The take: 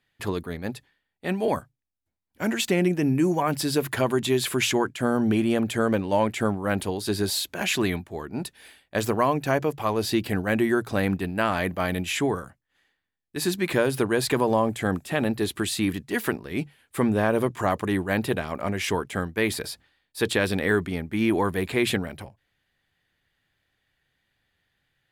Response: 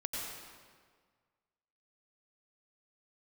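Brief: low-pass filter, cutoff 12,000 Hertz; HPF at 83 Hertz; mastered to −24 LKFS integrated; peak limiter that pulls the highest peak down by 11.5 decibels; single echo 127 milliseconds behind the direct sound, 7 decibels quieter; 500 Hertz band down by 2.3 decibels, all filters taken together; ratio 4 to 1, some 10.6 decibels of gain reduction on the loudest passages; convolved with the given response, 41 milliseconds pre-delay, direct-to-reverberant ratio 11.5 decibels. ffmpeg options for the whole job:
-filter_complex "[0:a]highpass=83,lowpass=12000,equalizer=frequency=500:width_type=o:gain=-3,acompressor=threshold=-32dB:ratio=4,alimiter=level_in=2dB:limit=-24dB:level=0:latency=1,volume=-2dB,aecho=1:1:127:0.447,asplit=2[link_01][link_02];[1:a]atrim=start_sample=2205,adelay=41[link_03];[link_02][link_03]afir=irnorm=-1:irlink=0,volume=-14dB[link_04];[link_01][link_04]amix=inputs=2:normalize=0,volume=12.5dB"

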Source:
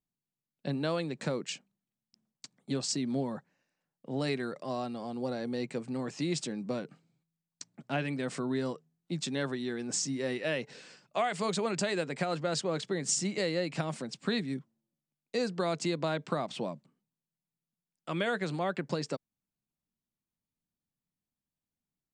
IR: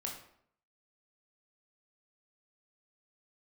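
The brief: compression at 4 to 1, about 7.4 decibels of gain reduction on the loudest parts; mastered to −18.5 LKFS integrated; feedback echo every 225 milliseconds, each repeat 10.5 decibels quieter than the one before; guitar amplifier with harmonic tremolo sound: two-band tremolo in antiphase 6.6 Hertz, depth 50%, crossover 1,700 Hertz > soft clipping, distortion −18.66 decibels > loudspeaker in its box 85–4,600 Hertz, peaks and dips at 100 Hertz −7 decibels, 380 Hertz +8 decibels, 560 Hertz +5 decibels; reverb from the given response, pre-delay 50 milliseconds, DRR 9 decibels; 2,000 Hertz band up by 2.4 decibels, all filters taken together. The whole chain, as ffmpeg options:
-filter_complex "[0:a]equalizer=frequency=2000:width_type=o:gain=3,acompressor=threshold=-35dB:ratio=4,aecho=1:1:225|450|675:0.299|0.0896|0.0269,asplit=2[link_01][link_02];[1:a]atrim=start_sample=2205,adelay=50[link_03];[link_02][link_03]afir=irnorm=-1:irlink=0,volume=-9dB[link_04];[link_01][link_04]amix=inputs=2:normalize=0,acrossover=split=1700[link_05][link_06];[link_05]aeval=exprs='val(0)*(1-0.5/2+0.5/2*cos(2*PI*6.6*n/s))':channel_layout=same[link_07];[link_06]aeval=exprs='val(0)*(1-0.5/2-0.5/2*cos(2*PI*6.6*n/s))':channel_layout=same[link_08];[link_07][link_08]amix=inputs=2:normalize=0,asoftclip=threshold=-31dB,highpass=85,equalizer=frequency=100:width_type=q:width=4:gain=-7,equalizer=frequency=380:width_type=q:width=4:gain=8,equalizer=frequency=560:width_type=q:width=4:gain=5,lowpass=frequency=4600:width=0.5412,lowpass=frequency=4600:width=1.3066,volume=21dB"

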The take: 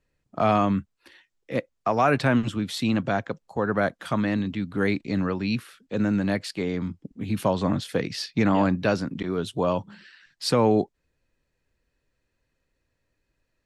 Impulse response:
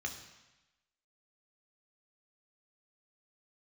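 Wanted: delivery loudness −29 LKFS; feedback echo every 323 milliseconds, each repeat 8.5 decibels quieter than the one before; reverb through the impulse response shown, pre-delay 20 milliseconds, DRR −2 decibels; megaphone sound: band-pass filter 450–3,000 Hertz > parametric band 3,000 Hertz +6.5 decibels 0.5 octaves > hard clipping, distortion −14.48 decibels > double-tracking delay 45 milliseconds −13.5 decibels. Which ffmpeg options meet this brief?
-filter_complex "[0:a]aecho=1:1:323|646|969|1292:0.376|0.143|0.0543|0.0206,asplit=2[link_01][link_02];[1:a]atrim=start_sample=2205,adelay=20[link_03];[link_02][link_03]afir=irnorm=-1:irlink=0,volume=0.5dB[link_04];[link_01][link_04]amix=inputs=2:normalize=0,highpass=450,lowpass=3000,equalizer=frequency=3000:width_type=o:width=0.5:gain=6.5,asoftclip=type=hard:threshold=-16.5dB,asplit=2[link_05][link_06];[link_06]adelay=45,volume=-13.5dB[link_07];[link_05][link_07]amix=inputs=2:normalize=0,volume=-3dB"

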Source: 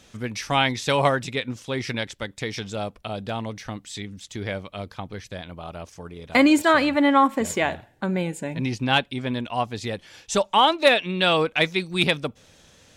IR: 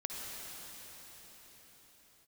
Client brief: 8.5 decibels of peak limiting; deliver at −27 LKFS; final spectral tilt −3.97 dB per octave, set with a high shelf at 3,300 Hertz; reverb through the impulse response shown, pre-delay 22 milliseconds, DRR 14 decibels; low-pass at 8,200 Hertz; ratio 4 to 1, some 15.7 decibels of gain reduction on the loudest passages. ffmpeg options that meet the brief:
-filter_complex "[0:a]lowpass=8200,highshelf=frequency=3300:gain=5.5,acompressor=threshold=-31dB:ratio=4,alimiter=limit=-23dB:level=0:latency=1,asplit=2[link_01][link_02];[1:a]atrim=start_sample=2205,adelay=22[link_03];[link_02][link_03]afir=irnorm=-1:irlink=0,volume=-16dB[link_04];[link_01][link_04]amix=inputs=2:normalize=0,volume=8dB"

